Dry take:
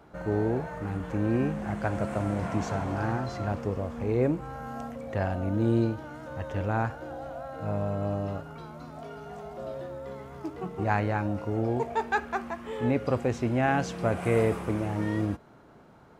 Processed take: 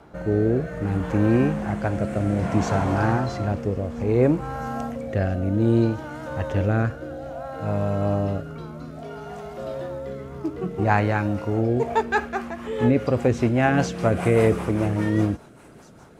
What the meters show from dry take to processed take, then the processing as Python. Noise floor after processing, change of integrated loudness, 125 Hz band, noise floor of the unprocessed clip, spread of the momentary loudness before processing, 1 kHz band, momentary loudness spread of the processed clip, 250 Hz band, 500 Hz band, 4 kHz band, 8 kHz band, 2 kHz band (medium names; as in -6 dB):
-47 dBFS, +6.5 dB, +7.0 dB, -53 dBFS, 13 LU, +4.5 dB, 14 LU, +7.0 dB, +6.0 dB, +6.0 dB, no reading, +5.5 dB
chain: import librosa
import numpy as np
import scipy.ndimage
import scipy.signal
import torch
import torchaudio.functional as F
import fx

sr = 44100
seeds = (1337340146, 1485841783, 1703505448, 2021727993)

y = fx.echo_wet_highpass(x, sr, ms=663, feedback_pct=78, hz=5300.0, wet_db=-16)
y = fx.rotary_switch(y, sr, hz=0.6, then_hz=5.0, switch_at_s=11.41)
y = F.gain(torch.from_numpy(y), 8.5).numpy()